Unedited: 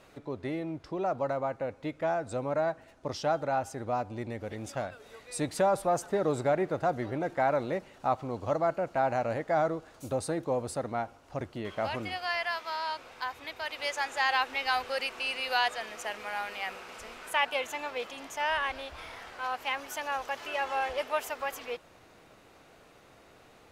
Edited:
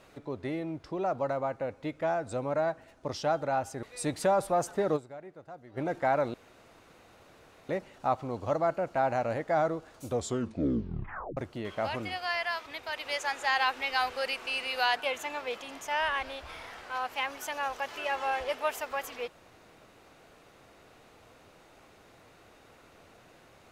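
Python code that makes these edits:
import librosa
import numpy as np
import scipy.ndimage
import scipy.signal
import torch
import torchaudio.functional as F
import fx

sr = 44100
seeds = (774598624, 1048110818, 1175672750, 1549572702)

y = fx.edit(x, sr, fx.cut(start_s=3.83, length_s=1.35),
    fx.fade_down_up(start_s=6.31, length_s=0.82, db=-18.0, fade_s=0.18, curve='exp'),
    fx.insert_room_tone(at_s=7.69, length_s=1.35),
    fx.tape_stop(start_s=10.06, length_s=1.31),
    fx.cut(start_s=12.66, length_s=0.73),
    fx.cut(start_s=15.69, length_s=1.76), tone=tone)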